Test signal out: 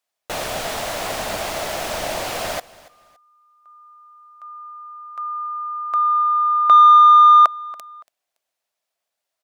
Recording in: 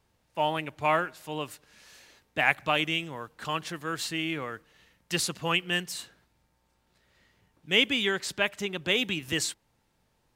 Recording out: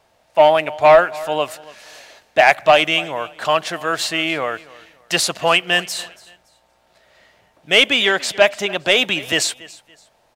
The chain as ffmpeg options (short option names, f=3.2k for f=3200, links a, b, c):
-filter_complex "[0:a]equalizer=f=650:w=2.8:g=13,asplit=2[a][b];[b]highpass=f=720:p=1,volume=10dB,asoftclip=type=tanh:threshold=-5dB[c];[a][c]amix=inputs=2:normalize=0,lowpass=f=6.6k:p=1,volume=-6dB,aecho=1:1:283|566:0.0891|0.0258,acontrast=35,volume=1.5dB"